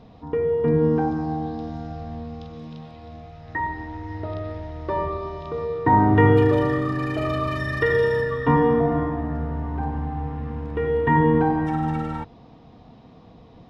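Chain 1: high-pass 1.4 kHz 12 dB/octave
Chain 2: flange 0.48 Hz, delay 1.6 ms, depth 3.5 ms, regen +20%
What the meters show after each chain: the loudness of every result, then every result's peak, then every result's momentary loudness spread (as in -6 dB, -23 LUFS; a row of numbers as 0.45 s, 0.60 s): -33.0 LUFS, -26.5 LUFS; -15.0 dBFS, -8.5 dBFS; 21 LU, 17 LU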